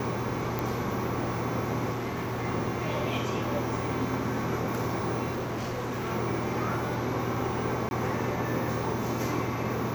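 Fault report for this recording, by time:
0.59 pop
1.92–2.45 clipped -28.5 dBFS
5.32–6.12 clipped -29 dBFS
7.89–7.91 gap 21 ms

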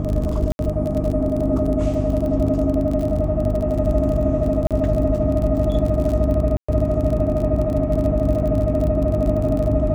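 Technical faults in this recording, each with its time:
crackle 33/s -25 dBFS
hum 50 Hz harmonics 6 -24 dBFS
0.52–0.59 gap 71 ms
4.67–4.71 gap 37 ms
6.57–6.68 gap 0.115 s

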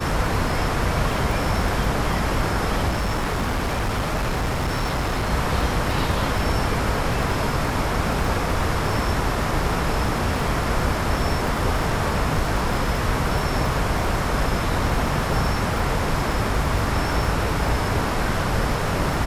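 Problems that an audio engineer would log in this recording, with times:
crackle 25/s -27 dBFS
2.88–5.32 clipped -19.5 dBFS

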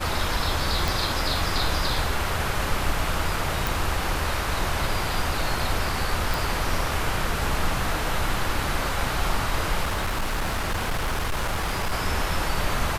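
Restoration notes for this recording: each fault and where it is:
0.88 pop
3.67 pop
6.34 pop
9.83–11.93 clipped -21.5 dBFS

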